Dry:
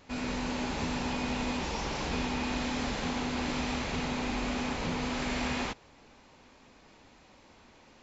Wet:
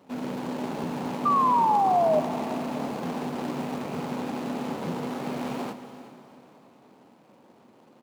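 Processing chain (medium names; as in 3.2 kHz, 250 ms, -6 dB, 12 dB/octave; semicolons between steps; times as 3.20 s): median filter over 25 samples; high-pass 140 Hz 24 dB/octave; on a send: multi-tap echo 356/379 ms -19/-19 dB; on the sum: painted sound fall, 1.25–2.20 s, 600–1200 Hz -26 dBFS; plate-style reverb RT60 3.8 s, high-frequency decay 0.9×, DRR 10.5 dB; trim +4.5 dB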